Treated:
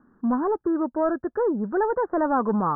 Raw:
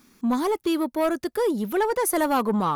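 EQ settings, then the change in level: steep low-pass 1700 Hz 96 dB/oct; 0.0 dB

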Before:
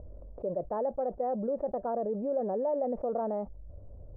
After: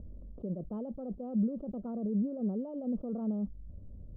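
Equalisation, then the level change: EQ curve 120 Hz 0 dB, 200 Hz +9 dB, 560 Hz -10 dB, 840 Hz -12 dB, 1300 Hz -5 dB, 2000 Hz -27 dB, 3000 Hz +11 dB; dynamic EQ 840 Hz, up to -5 dB, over -50 dBFS, Q 1; air absorption 420 m; 0.0 dB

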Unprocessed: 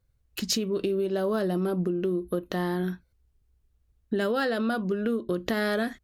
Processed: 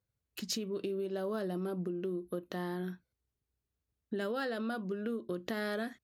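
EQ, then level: HPF 110 Hz 12 dB/oct; -9.0 dB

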